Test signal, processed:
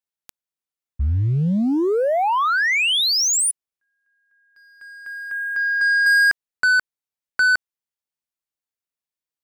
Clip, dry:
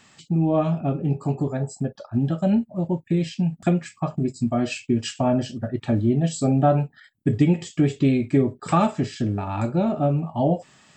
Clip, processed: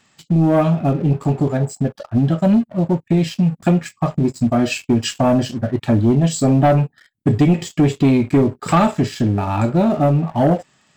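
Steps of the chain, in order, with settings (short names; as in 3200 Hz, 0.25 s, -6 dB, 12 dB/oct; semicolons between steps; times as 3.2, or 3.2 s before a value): sample leveller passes 2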